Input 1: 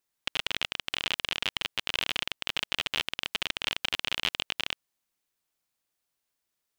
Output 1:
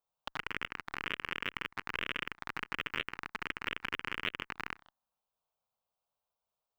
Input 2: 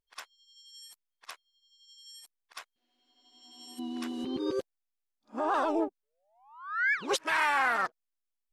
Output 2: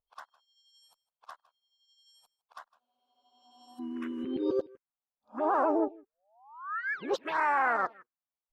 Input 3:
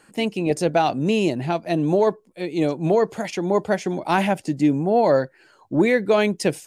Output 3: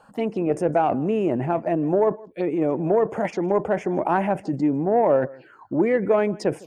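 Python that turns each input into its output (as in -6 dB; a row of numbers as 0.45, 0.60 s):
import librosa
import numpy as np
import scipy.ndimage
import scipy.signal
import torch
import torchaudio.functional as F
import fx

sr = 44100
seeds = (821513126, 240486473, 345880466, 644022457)

p1 = fx.peak_eq(x, sr, hz=9100.0, db=-15.0, octaves=2.8)
p2 = fx.over_compress(p1, sr, threshold_db=-30.0, ratio=-1.0)
p3 = p1 + F.gain(torch.from_numpy(p2), 1.0).numpy()
p4 = fx.bass_treble(p3, sr, bass_db=-7, treble_db=-6)
p5 = p4 + fx.echo_single(p4, sr, ms=158, db=-21.5, dry=0)
p6 = fx.env_phaser(p5, sr, low_hz=320.0, high_hz=4100.0, full_db=-19.5)
y = fx.cheby_harmonics(p6, sr, harmonics=(3,), levels_db=(-24,), full_scale_db=-8.5)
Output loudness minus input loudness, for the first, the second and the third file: -7.5, -0.5, -1.5 LU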